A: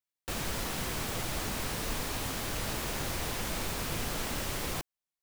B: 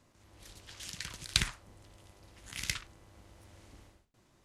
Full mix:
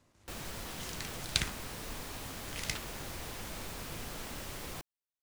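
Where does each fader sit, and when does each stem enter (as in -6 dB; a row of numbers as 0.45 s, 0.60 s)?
-8.0 dB, -2.5 dB; 0.00 s, 0.00 s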